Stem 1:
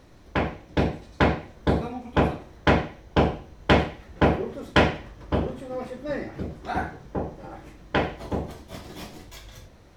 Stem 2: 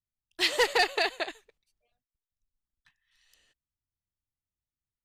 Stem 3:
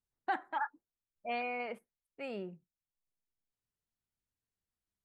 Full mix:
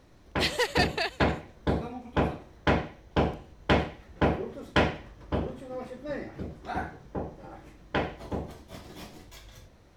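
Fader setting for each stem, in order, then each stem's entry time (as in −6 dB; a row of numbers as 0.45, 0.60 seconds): −5.0 dB, −2.5 dB, muted; 0.00 s, 0.00 s, muted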